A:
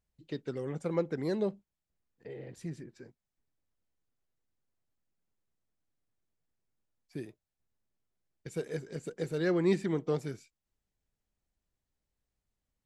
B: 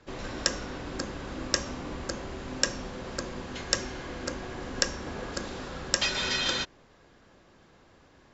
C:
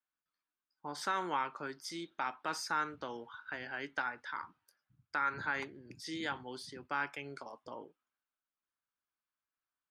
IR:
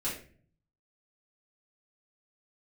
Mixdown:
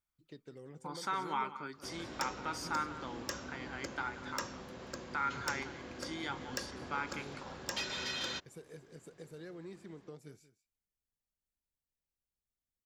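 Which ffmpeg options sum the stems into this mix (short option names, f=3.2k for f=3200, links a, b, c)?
-filter_complex "[0:a]highshelf=f=7.6k:g=10.5,acompressor=threshold=-33dB:ratio=6,volume=-12.5dB,asplit=2[a][b];[b]volume=-16dB[c];[1:a]highpass=74,asoftclip=type=tanh:threshold=-18.5dB,adelay=1750,volume=-9dB[d];[2:a]bandreject=f=1.1k:w=20,aecho=1:1:0.9:0.48,volume=-2.5dB,asplit=2[e][f];[f]volume=-14.5dB[g];[c][g]amix=inputs=2:normalize=0,aecho=0:1:183:1[h];[a][d][e][h]amix=inputs=4:normalize=0"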